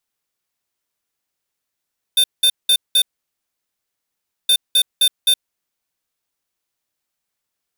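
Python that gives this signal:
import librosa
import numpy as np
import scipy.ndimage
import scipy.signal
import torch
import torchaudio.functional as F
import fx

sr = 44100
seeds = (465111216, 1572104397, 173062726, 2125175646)

y = fx.beep_pattern(sr, wave='square', hz=3590.0, on_s=0.07, off_s=0.19, beeps=4, pause_s=1.47, groups=2, level_db=-13.0)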